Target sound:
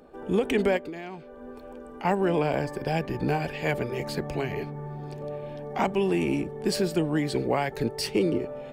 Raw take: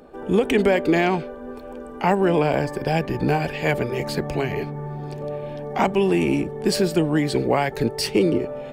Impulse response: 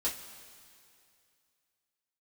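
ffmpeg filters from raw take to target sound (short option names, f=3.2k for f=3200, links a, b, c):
-filter_complex "[0:a]asettb=1/sr,asplit=3[a][b][c];[a]atrim=end=0.774[d];[b]atrim=start=0.77:end=2.05,asetpts=PTS-STARTPTS,afade=t=in:d=0.004:c=qsin,afade=t=out:st=1.276:d=0.004:c=qsin,acompressor=threshold=-32dB:ratio=4[e];[c]atrim=start=2.046[f];[d][e]acrossfade=d=0.004:c1=hsin:c2=qsin[g];[g][f]acrossfade=d=0.004:c1=qsin:c2=hsin,volume=-5.5dB"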